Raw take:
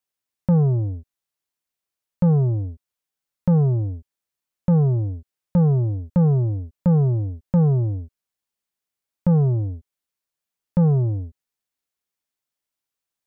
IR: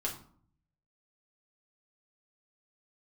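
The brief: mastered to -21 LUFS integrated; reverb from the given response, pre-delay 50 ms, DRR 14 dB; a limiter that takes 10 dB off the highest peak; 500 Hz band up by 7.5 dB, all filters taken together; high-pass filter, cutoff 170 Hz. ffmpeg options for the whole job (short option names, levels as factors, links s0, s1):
-filter_complex "[0:a]highpass=170,equalizer=f=500:t=o:g=8.5,alimiter=limit=0.112:level=0:latency=1,asplit=2[s0][s1];[1:a]atrim=start_sample=2205,adelay=50[s2];[s1][s2]afir=irnorm=-1:irlink=0,volume=0.141[s3];[s0][s3]amix=inputs=2:normalize=0,volume=2.51"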